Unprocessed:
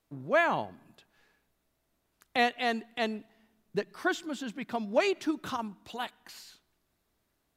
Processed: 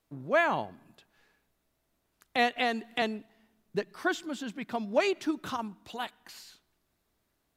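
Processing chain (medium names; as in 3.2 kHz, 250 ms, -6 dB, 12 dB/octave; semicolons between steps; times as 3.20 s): 2.56–3.02 s: three bands compressed up and down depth 100%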